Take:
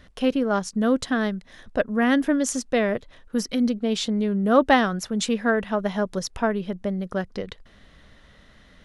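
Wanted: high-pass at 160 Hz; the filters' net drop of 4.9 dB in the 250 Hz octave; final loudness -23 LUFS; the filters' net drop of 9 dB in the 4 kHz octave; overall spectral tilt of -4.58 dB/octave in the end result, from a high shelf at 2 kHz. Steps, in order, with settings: high-pass 160 Hz; peaking EQ 250 Hz -4.5 dB; treble shelf 2 kHz -5 dB; peaking EQ 4 kHz -7 dB; trim +4 dB

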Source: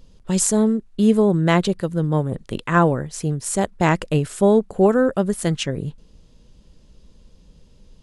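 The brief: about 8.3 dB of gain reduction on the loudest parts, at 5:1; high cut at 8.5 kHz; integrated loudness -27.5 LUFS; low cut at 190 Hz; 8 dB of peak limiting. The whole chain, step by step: high-pass 190 Hz; low-pass 8.5 kHz; compression 5:1, threshold -20 dBFS; trim +0.5 dB; peak limiter -16.5 dBFS

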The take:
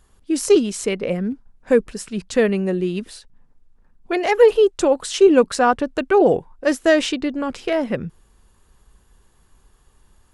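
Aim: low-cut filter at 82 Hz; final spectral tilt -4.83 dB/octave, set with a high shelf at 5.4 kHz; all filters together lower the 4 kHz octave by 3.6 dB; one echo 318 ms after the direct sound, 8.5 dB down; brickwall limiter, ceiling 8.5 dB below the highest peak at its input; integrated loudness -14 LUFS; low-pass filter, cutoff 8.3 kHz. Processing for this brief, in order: high-pass 82 Hz; low-pass 8.3 kHz; peaking EQ 4 kHz -3.5 dB; treble shelf 5.4 kHz -3.5 dB; peak limiter -11 dBFS; delay 318 ms -8.5 dB; trim +8 dB

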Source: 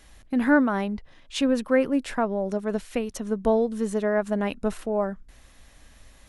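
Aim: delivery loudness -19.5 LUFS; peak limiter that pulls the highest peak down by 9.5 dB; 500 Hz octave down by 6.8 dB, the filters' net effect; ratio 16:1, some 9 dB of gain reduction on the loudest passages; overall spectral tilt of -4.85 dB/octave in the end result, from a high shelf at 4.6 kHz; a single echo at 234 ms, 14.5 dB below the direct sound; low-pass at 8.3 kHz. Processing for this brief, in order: low-pass 8.3 kHz; peaking EQ 500 Hz -8.5 dB; treble shelf 4.6 kHz +3.5 dB; compression 16:1, threshold -25 dBFS; peak limiter -26.5 dBFS; delay 234 ms -14.5 dB; trim +16.5 dB

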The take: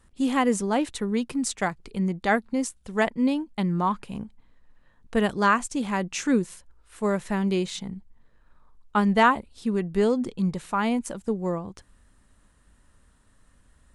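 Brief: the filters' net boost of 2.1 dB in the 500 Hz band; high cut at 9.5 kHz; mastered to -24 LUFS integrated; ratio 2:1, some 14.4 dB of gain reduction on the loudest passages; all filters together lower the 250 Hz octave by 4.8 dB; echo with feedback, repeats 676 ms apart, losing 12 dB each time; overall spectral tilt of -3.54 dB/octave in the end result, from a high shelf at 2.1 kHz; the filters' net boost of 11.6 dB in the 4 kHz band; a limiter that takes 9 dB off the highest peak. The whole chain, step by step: low-pass 9.5 kHz; peaking EQ 250 Hz -7 dB; peaking EQ 500 Hz +4 dB; treble shelf 2.1 kHz +7.5 dB; peaking EQ 4 kHz +8 dB; compression 2:1, threshold -38 dBFS; peak limiter -25 dBFS; feedback delay 676 ms, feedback 25%, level -12 dB; trim +13 dB

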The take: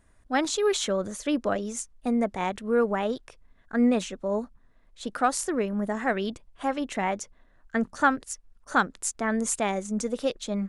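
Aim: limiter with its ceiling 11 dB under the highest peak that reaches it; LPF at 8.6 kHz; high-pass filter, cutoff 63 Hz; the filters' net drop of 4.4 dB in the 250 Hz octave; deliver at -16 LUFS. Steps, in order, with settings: high-pass 63 Hz; low-pass 8.6 kHz; peaking EQ 250 Hz -5 dB; trim +15.5 dB; peak limiter -3.5 dBFS

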